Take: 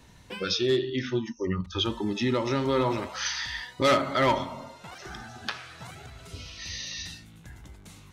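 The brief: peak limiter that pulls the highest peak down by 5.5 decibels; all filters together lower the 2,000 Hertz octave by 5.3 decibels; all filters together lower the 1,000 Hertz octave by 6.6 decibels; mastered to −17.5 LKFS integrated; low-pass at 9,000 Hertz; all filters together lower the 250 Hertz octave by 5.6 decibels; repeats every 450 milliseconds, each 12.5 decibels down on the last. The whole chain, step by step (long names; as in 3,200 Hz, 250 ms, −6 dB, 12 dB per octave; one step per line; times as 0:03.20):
low-pass filter 9,000 Hz
parametric band 250 Hz −7 dB
parametric band 1,000 Hz −6.5 dB
parametric band 2,000 Hz −4.5 dB
brickwall limiter −22.5 dBFS
repeating echo 450 ms, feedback 24%, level −12.5 dB
level +16.5 dB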